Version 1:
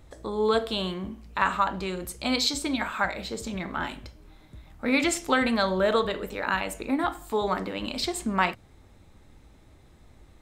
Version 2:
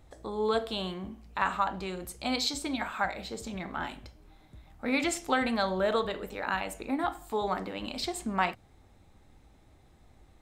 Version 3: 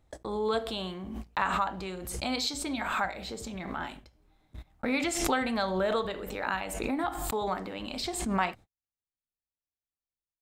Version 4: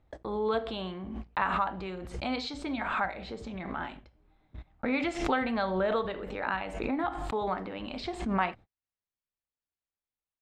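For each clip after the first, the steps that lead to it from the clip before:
bell 760 Hz +6 dB 0.26 oct; gain -5 dB
gate -45 dBFS, range -48 dB; backwards sustainer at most 40 dB/s; gain -1.5 dB
LPF 3000 Hz 12 dB/oct

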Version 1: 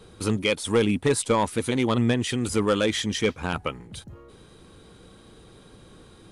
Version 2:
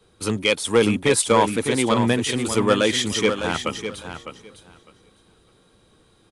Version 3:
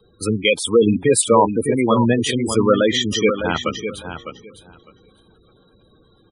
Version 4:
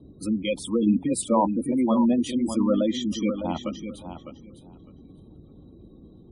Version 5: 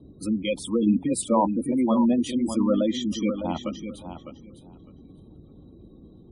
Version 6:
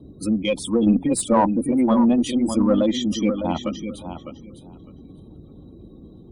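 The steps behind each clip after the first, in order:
low shelf 220 Hz -7.5 dB; feedback echo 0.605 s, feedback 25%, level -7 dB; three-band expander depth 40%; gain +4.5 dB
spectral gate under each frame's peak -15 dB strong; gain +4 dB
tilt shelf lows +5.5 dB, about 1100 Hz; fixed phaser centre 430 Hz, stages 6; band noise 35–340 Hz -42 dBFS; gain -6.5 dB
nothing audible
one diode to ground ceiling -12.5 dBFS; gain +5 dB

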